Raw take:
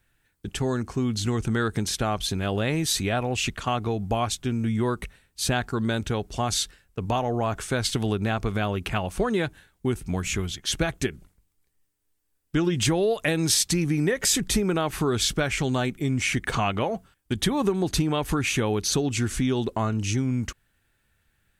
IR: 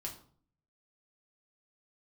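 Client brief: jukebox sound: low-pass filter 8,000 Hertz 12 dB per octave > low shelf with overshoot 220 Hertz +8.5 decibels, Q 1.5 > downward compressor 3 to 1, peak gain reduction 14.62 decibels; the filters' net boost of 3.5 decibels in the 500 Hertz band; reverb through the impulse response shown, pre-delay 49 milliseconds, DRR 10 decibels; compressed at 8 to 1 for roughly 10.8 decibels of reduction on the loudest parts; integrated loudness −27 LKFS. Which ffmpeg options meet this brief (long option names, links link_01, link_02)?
-filter_complex "[0:a]equalizer=frequency=500:width_type=o:gain=6.5,acompressor=threshold=-26dB:ratio=8,asplit=2[link_01][link_02];[1:a]atrim=start_sample=2205,adelay=49[link_03];[link_02][link_03]afir=irnorm=-1:irlink=0,volume=-8.5dB[link_04];[link_01][link_04]amix=inputs=2:normalize=0,lowpass=8000,lowshelf=frequency=220:width_type=q:width=1.5:gain=8.5,acompressor=threshold=-36dB:ratio=3,volume=10dB"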